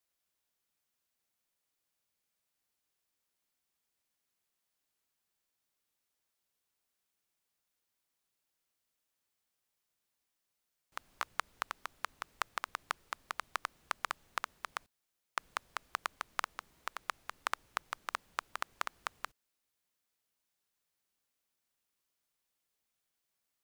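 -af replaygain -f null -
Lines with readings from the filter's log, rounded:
track_gain = +22.3 dB
track_peak = 0.196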